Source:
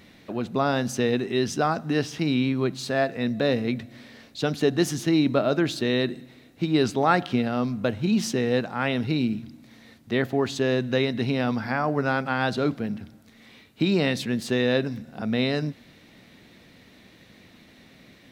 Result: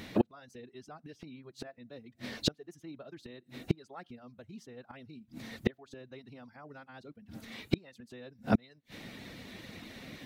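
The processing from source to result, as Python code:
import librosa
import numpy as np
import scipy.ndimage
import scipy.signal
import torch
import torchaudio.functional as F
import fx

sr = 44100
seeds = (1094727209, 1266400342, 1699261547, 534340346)

y = fx.stretch_vocoder(x, sr, factor=0.56)
y = fx.gate_flip(y, sr, shuts_db=-22.0, range_db=-32)
y = fx.dereverb_blind(y, sr, rt60_s=0.59)
y = F.gain(torch.from_numpy(y), 8.0).numpy()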